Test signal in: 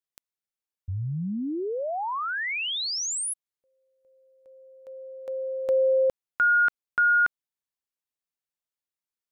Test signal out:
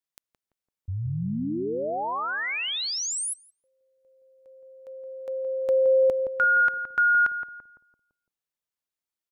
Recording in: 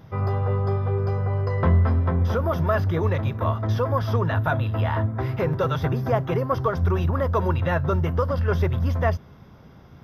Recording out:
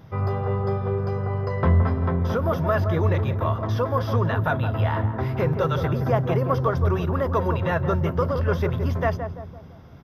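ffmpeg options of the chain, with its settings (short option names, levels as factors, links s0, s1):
-filter_complex "[0:a]asplit=2[s0][s1];[s1]adelay=169,lowpass=f=890:p=1,volume=0.501,asplit=2[s2][s3];[s3]adelay=169,lowpass=f=890:p=1,volume=0.52,asplit=2[s4][s5];[s5]adelay=169,lowpass=f=890:p=1,volume=0.52,asplit=2[s6][s7];[s7]adelay=169,lowpass=f=890:p=1,volume=0.52,asplit=2[s8][s9];[s9]adelay=169,lowpass=f=890:p=1,volume=0.52,asplit=2[s10][s11];[s11]adelay=169,lowpass=f=890:p=1,volume=0.52[s12];[s0][s2][s4][s6][s8][s10][s12]amix=inputs=7:normalize=0"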